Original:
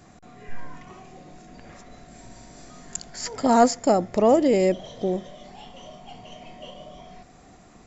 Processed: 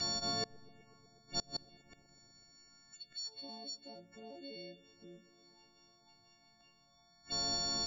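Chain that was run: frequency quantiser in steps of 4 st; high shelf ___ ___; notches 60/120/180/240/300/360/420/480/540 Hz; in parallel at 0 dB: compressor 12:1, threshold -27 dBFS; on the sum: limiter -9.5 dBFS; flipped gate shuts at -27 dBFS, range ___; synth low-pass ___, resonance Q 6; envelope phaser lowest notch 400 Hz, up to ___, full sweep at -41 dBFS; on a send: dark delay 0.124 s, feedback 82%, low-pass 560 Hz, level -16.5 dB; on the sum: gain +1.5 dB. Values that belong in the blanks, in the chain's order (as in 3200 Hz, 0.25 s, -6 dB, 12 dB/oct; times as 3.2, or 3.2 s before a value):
2600 Hz, +3 dB, -32 dB, 4700 Hz, 2500 Hz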